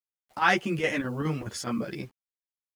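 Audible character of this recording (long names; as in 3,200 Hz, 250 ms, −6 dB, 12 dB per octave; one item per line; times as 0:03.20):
chopped level 4.8 Hz, depth 60%, duty 80%
a quantiser's noise floor 10 bits, dither none
a shimmering, thickened sound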